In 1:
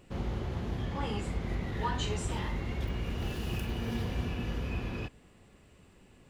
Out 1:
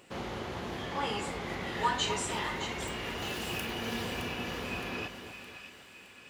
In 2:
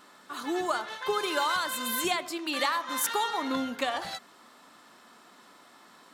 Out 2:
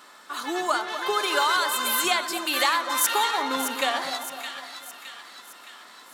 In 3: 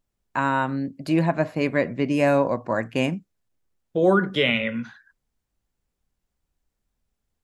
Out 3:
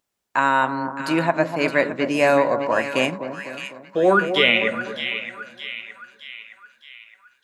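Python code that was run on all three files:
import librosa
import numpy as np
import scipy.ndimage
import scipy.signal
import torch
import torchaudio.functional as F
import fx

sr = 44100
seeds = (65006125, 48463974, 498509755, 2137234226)

p1 = fx.highpass(x, sr, hz=640.0, slope=6)
p2 = p1 + fx.echo_split(p1, sr, split_hz=1300.0, low_ms=251, high_ms=616, feedback_pct=52, wet_db=-9, dry=0)
y = p2 * librosa.db_to_amplitude(6.5)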